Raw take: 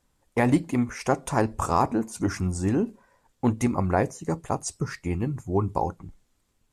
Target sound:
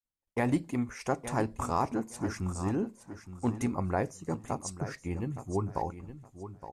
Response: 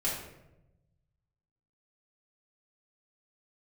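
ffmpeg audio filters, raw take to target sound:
-af "aecho=1:1:867|1734|2601:0.251|0.0527|0.0111,agate=range=-33dB:threshold=-54dB:ratio=3:detection=peak,volume=-7dB"

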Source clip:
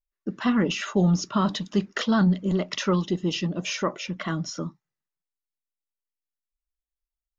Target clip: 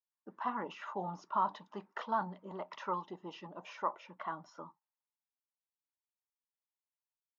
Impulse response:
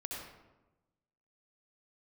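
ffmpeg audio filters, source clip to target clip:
-af "bandpass=frequency=920:width_type=q:width=5.3:csg=0,volume=2.5dB"

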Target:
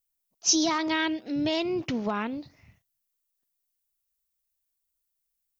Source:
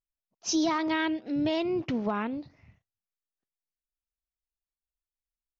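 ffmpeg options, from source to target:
ffmpeg -i in.wav -af "aemphasis=mode=production:type=75kf" out.wav

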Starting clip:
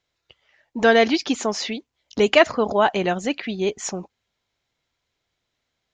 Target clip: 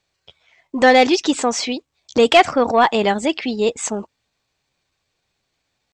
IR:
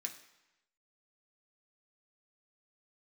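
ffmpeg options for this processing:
-af "asetrate=49501,aresample=44100,atempo=0.890899,acontrast=50,volume=-1dB"

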